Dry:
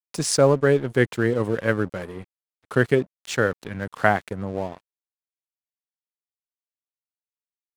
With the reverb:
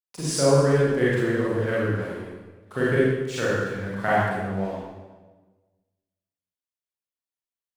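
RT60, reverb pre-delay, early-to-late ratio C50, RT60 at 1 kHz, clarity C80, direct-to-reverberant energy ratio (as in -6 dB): 1.3 s, 32 ms, -3.5 dB, 1.2 s, 0.5 dB, -8.5 dB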